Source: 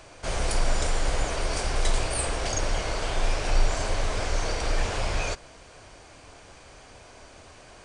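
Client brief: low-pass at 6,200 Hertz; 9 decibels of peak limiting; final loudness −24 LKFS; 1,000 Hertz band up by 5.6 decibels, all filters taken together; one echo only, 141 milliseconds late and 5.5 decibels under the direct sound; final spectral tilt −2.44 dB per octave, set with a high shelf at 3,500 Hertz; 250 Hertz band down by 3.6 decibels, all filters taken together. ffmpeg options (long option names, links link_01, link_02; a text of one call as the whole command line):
ffmpeg -i in.wav -af "lowpass=6200,equalizer=frequency=250:width_type=o:gain=-6,equalizer=frequency=1000:width_type=o:gain=7,highshelf=frequency=3500:gain=7,alimiter=limit=-18.5dB:level=0:latency=1,aecho=1:1:141:0.531,volume=4.5dB" out.wav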